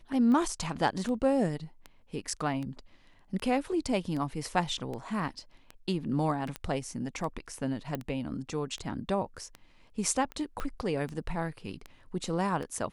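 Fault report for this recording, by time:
tick 78 rpm -26 dBFS
6.56 pop -20 dBFS
7.95 pop -20 dBFS
10.6 pop -21 dBFS

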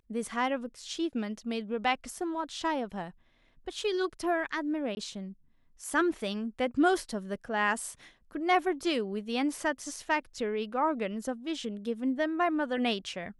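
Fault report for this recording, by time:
4.95–4.97 gap 20 ms

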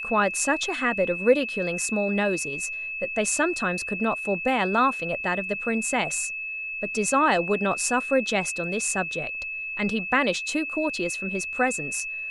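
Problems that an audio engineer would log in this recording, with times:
tone 2600 Hz -30 dBFS

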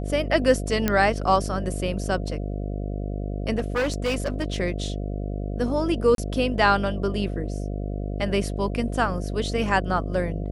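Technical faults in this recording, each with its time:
buzz 50 Hz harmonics 14 -29 dBFS
0.88 pop -7 dBFS
3.58–4.56 clipped -20 dBFS
6.15–6.18 gap 32 ms

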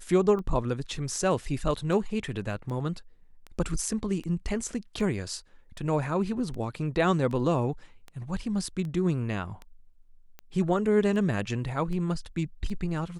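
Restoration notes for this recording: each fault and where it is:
tick 78 rpm -27 dBFS

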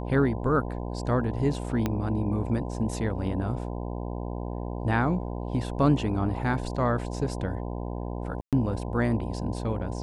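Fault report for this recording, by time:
buzz 60 Hz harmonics 17 -33 dBFS
1.86 pop -13 dBFS
8.41–8.53 gap 0.117 s

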